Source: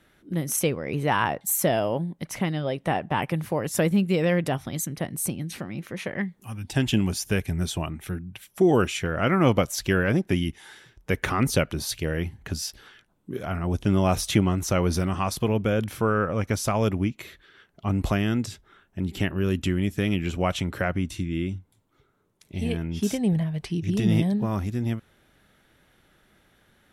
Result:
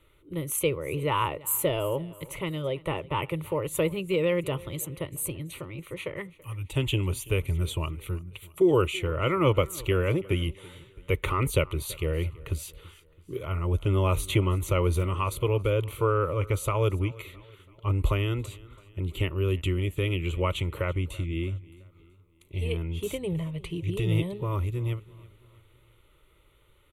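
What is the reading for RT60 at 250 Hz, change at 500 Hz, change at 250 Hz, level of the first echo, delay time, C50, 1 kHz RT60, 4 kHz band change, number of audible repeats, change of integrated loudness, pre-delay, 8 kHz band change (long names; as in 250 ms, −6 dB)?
no reverb audible, −1.0 dB, −7.5 dB, −21.5 dB, 332 ms, no reverb audible, no reverb audible, −2.5 dB, 3, −2.5 dB, no reverb audible, −5.0 dB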